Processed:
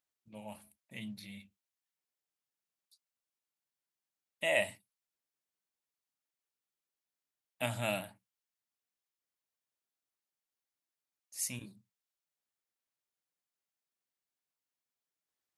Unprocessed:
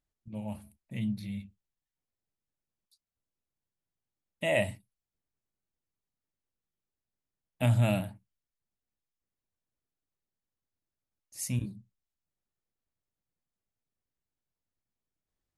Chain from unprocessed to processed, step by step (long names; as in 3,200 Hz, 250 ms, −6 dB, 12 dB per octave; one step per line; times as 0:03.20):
high-pass filter 880 Hz 6 dB per octave
level +1 dB